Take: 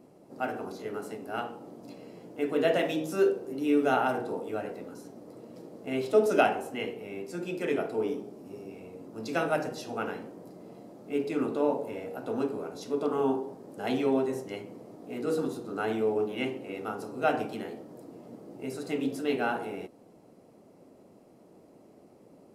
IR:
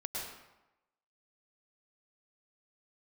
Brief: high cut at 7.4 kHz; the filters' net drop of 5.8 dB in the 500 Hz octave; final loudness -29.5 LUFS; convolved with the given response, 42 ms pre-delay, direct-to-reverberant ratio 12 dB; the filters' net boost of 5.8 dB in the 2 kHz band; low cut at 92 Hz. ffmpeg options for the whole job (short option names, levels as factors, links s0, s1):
-filter_complex "[0:a]highpass=92,lowpass=7400,equalizer=f=500:t=o:g=-8,equalizer=f=2000:t=o:g=9,asplit=2[s0][s1];[1:a]atrim=start_sample=2205,adelay=42[s2];[s1][s2]afir=irnorm=-1:irlink=0,volume=0.2[s3];[s0][s3]amix=inputs=2:normalize=0,volume=1.41"